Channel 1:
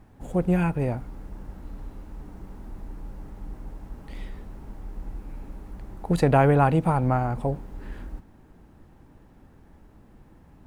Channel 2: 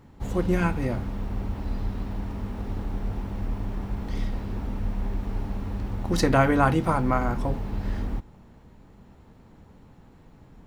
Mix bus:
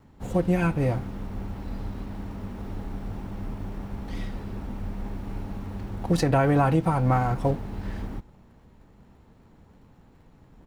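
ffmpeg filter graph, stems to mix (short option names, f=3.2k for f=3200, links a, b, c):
-filter_complex "[0:a]aeval=exprs='sgn(val(0))*max(abs(val(0))-0.00531,0)':c=same,volume=1.5dB[a];[1:a]adelay=1.6,volume=-3dB[b];[a][b]amix=inputs=2:normalize=0,alimiter=limit=-12.5dB:level=0:latency=1:release=235"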